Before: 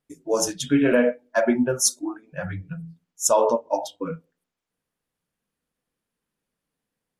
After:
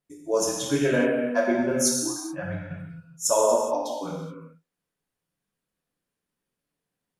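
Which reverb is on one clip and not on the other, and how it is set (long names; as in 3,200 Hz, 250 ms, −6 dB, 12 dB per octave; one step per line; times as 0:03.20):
reverb whose tail is shaped and stops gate 450 ms falling, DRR −2 dB
level −5.5 dB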